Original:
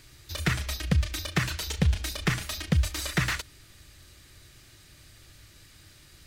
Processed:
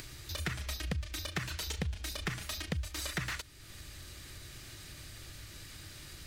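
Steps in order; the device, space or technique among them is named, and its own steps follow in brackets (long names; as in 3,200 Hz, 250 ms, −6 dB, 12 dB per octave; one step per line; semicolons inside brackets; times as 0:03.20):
upward and downward compression (upward compression, threshold −35 dBFS; downward compressor 6 to 1, threshold −29 dBFS, peak gain reduction 10.5 dB)
level −3.5 dB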